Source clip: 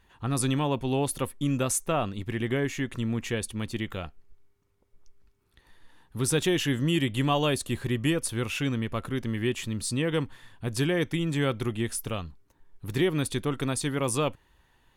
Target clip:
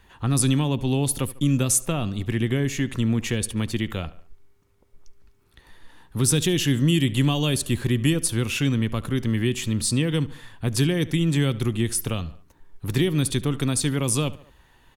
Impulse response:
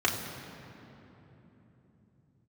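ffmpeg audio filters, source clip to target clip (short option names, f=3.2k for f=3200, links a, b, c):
-filter_complex "[0:a]asplit=2[a][b];[b]adelay=72,lowpass=f=4.7k:p=1,volume=-19dB,asplit=2[c][d];[d]adelay=72,lowpass=f=4.7k:p=1,volume=0.41,asplit=2[e][f];[f]adelay=72,lowpass=f=4.7k:p=1,volume=0.41[g];[a][c][e][g]amix=inputs=4:normalize=0,acrossover=split=290|3000[h][i][j];[i]acompressor=threshold=-39dB:ratio=4[k];[h][k][j]amix=inputs=3:normalize=0,volume=7.5dB"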